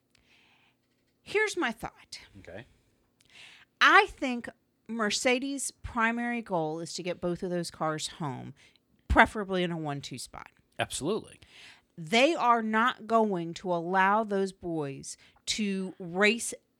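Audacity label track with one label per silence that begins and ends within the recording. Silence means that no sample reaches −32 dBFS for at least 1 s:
2.600000	3.810000	silence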